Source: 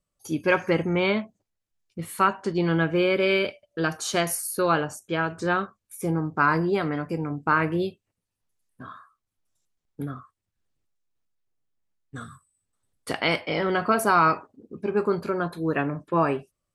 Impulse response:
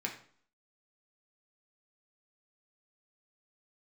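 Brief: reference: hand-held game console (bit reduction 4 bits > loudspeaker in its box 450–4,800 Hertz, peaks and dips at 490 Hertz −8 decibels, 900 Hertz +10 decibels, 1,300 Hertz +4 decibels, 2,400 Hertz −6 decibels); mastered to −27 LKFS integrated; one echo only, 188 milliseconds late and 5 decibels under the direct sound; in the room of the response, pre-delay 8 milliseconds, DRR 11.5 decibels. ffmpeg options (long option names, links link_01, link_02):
-filter_complex "[0:a]aecho=1:1:188:0.562,asplit=2[link_01][link_02];[1:a]atrim=start_sample=2205,adelay=8[link_03];[link_02][link_03]afir=irnorm=-1:irlink=0,volume=-14.5dB[link_04];[link_01][link_04]amix=inputs=2:normalize=0,acrusher=bits=3:mix=0:aa=0.000001,highpass=450,equalizer=frequency=490:width_type=q:width=4:gain=-8,equalizer=frequency=900:width_type=q:width=4:gain=10,equalizer=frequency=1300:width_type=q:width=4:gain=4,equalizer=frequency=2400:width_type=q:width=4:gain=-6,lowpass=frequency=4800:width=0.5412,lowpass=frequency=4800:width=1.3066,volume=-5dB"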